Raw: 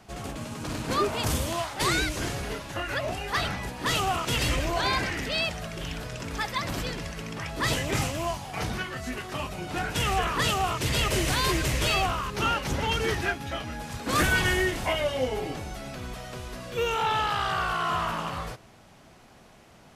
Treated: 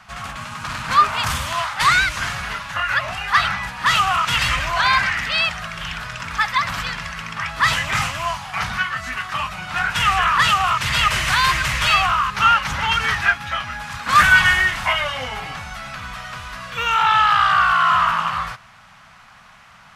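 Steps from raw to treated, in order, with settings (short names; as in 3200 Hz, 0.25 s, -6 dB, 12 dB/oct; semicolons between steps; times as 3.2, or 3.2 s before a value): EQ curve 190 Hz 0 dB, 350 Hz -17 dB, 1200 Hz +14 dB, 12000 Hz -1 dB; gain +1 dB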